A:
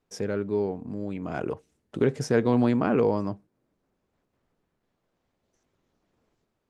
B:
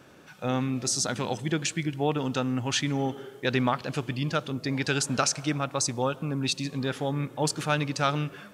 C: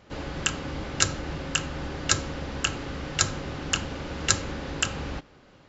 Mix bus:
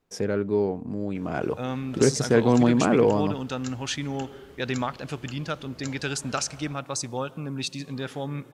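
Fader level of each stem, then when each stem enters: +3.0, −3.0, −18.5 decibels; 0.00, 1.15, 1.55 seconds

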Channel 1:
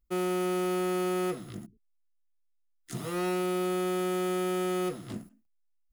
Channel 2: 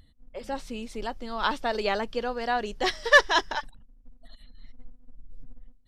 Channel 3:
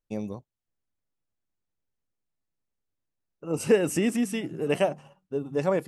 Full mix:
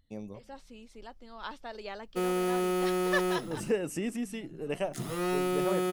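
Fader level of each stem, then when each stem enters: 0.0, −14.0, −8.5 decibels; 2.05, 0.00, 0.00 seconds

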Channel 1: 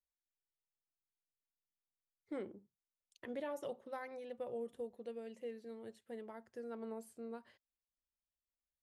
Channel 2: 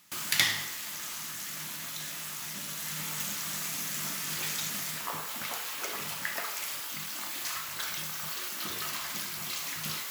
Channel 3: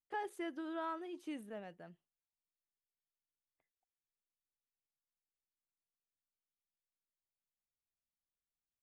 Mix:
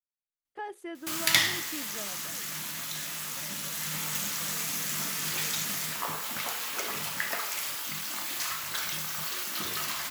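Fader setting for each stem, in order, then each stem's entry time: −13.0, +2.5, +2.0 decibels; 0.00, 0.95, 0.45 seconds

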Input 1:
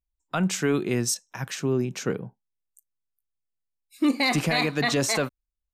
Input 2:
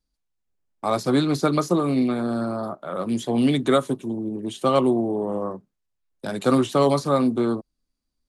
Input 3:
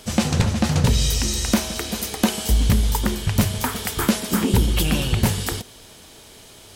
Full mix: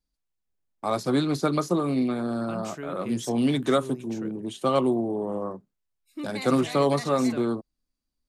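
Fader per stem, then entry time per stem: −13.5 dB, −3.5 dB, muted; 2.15 s, 0.00 s, muted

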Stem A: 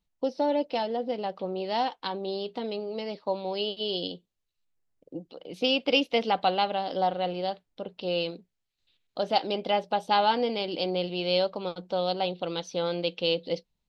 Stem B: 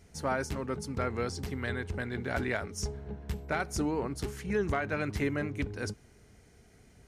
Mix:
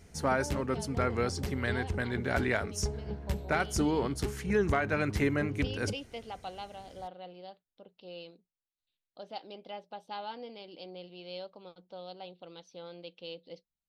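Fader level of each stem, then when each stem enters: −17.0, +2.5 decibels; 0.00, 0.00 seconds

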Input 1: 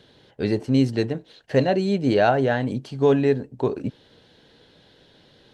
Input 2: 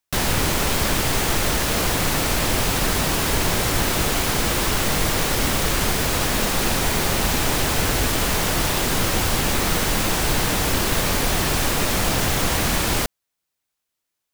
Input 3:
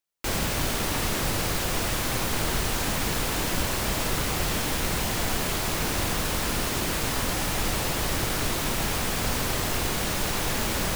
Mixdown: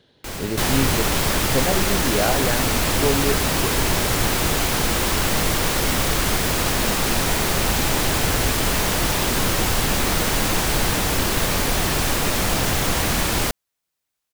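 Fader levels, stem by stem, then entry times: −4.5, 0.0, −4.0 decibels; 0.00, 0.45, 0.00 seconds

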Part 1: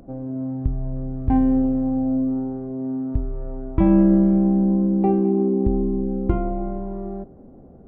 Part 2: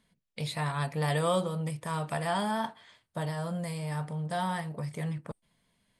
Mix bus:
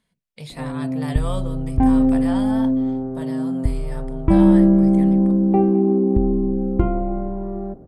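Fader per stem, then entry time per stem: +2.5, −2.0 decibels; 0.50, 0.00 seconds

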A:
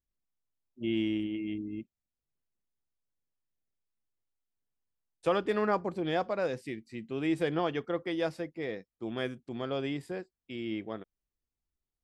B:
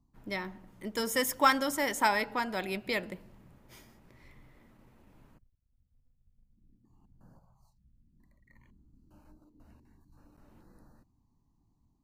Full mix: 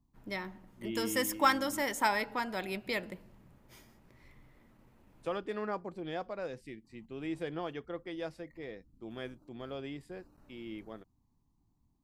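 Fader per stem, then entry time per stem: −8.0, −2.5 decibels; 0.00, 0.00 seconds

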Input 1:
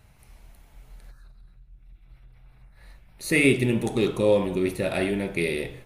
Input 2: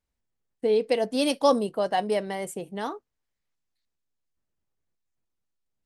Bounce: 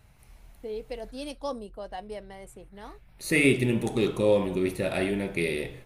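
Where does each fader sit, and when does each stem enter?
−2.0, −13.0 decibels; 0.00, 0.00 seconds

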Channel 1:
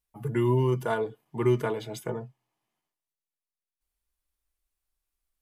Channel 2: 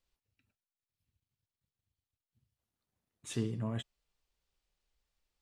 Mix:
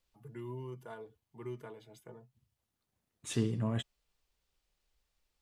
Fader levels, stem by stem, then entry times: −19.0, +3.0 decibels; 0.00, 0.00 seconds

